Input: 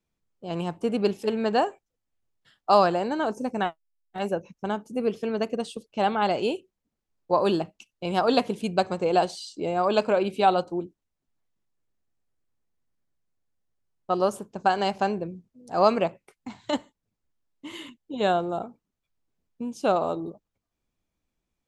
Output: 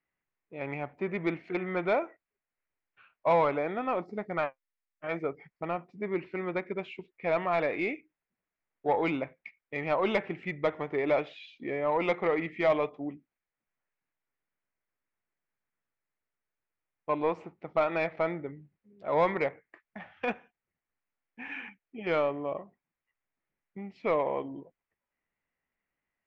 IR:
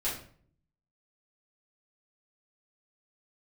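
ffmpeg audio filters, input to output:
-filter_complex "[0:a]lowpass=f=2600:t=q:w=2.6,asetrate=36382,aresample=44100,asplit=2[s0][s1];[s1]highpass=f=720:p=1,volume=5.01,asoftclip=type=tanh:threshold=0.531[s2];[s0][s2]amix=inputs=2:normalize=0,lowpass=f=2000:p=1,volume=0.501,volume=0.355"

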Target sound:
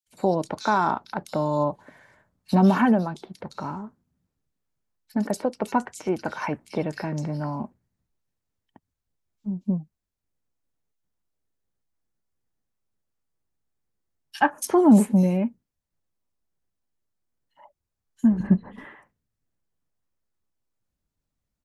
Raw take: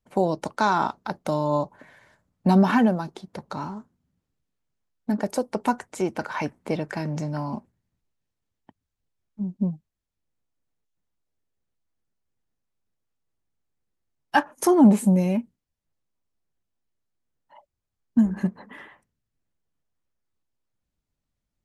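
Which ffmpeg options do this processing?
-filter_complex "[0:a]asettb=1/sr,asplit=3[s0][s1][s2];[s0]atrim=end=18.334[s3];[s1]atrim=start=18.33:end=18.78,asetpts=PTS-STARTPTS,afade=t=in:d=0.004:c=qsin,afade=t=out:st=0.446:d=0.004:c=qsin,aemphasis=mode=reproduction:type=bsi[s4];[s2]atrim=start=18.776[s5];[s3][s4]acrossfade=d=0.004:c1=hsin:c2=qsin[s6];[s6][s5]acrossfade=d=0.004:c1=qsin:c2=hsin,acrossover=split=3000[s7][s8];[s7]adelay=70[s9];[s9][s8]amix=inputs=2:normalize=0"

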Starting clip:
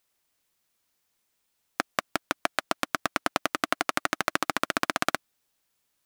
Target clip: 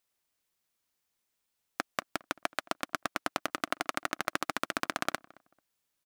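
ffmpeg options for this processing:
-filter_complex "[0:a]asplit=2[s0][s1];[s1]adelay=220,lowpass=f=1300:p=1,volume=0.0794,asplit=2[s2][s3];[s3]adelay=220,lowpass=f=1300:p=1,volume=0.28[s4];[s0][s2][s4]amix=inputs=3:normalize=0,volume=0.501"

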